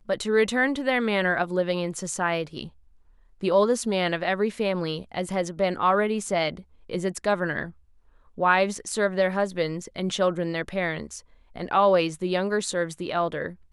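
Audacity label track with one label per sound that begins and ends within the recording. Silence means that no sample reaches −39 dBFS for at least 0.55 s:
3.410000	7.710000	sound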